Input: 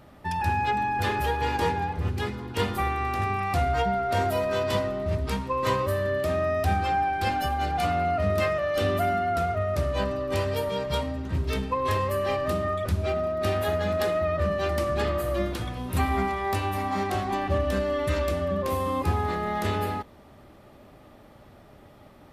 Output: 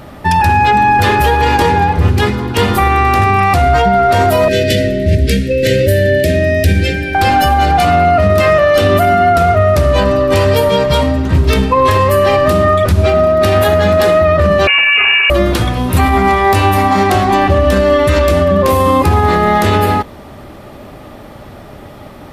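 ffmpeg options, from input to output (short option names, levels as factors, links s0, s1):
-filter_complex "[0:a]asettb=1/sr,asplit=3[s0][s1][s2];[s0]atrim=end=4.484[s3];[s1]atrim=start=4.48:end=7.15,asetpts=PTS-STARTPTS,afade=t=in:d=0.004:c=qsin,afade=t=out:st=2.666:d=0.004:c=qsin,asuperstop=centerf=990:order=8:qfactor=0.91[s4];[s2]atrim=start=7.146[s5];[s3][s4]acrossfade=d=0.004:c1=hsin:c2=qsin[s6];[s6][s5]acrossfade=d=0.004:c1=qsin:c2=hsin,asettb=1/sr,asplit=3[s7][s8][s9];[s7]atrim=end=14.674[s10];[s8]atrim=start=14.67:end=15.3,asetpts=PTS-STARTPTS,afade=t=in:d=0.004:c=qsin,afade=t=out:st=0.626:d=0.004:c=qsin,lowpass=f=2500:t=q:w=0.5098,lowpass=f=2500:t=q:w=0.6013,lowpass=f=2500:t=q:w=0.9,lowpass=f=2500:t=q:w=2.563,afreqshift=-2900[s11];[s9]atrim=start=15.296[s12];[s10][s11]acrossfade=d=0.004:c1=hsin:c2=qsin[s13];[s13][s12]acrossfade=d=0.004:c1=qsin:c2=hsin,alimiter=level_in=8.91:limit=0.891:release=50:level=0:latency=1,volume=0.891"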